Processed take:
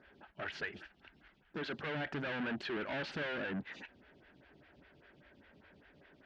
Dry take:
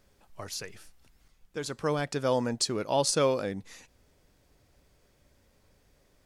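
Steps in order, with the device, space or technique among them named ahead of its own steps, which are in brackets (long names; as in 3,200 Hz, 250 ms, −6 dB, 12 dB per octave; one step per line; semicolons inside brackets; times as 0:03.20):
vibe pedal into a guitar amplifier (phaser with staggered stages 5 Hz; tube saturation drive 45 dB, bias 0.25; loudspeaker in its box 82–3,400 Hz, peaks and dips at 110 Hz −9 dB, 500 Hz −9 dB, 760 Hz −3 dB, 1,100 Hz −7 dB, 1,600 Hz +8 dB, 2,900 Hz +4 dB)
level +10.5 dB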